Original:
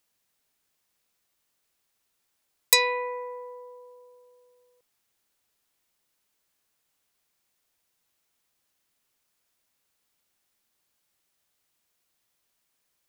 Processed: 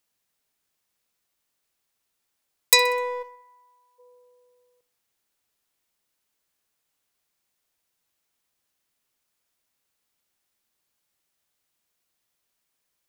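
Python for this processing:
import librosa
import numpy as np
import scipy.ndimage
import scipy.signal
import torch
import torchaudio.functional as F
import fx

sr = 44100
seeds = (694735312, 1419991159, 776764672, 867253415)

y = fx.cheby2_highpass(x, sr, hz=240.0, order=4, stop_db=70, at=(3.22, 3.98), fade=0.02)
y = fx.leveller(y, sr, passes=1)
y = fx.echo_feedback(y, sr, ms=63, feedback_pct=52, wet_db=-19.5)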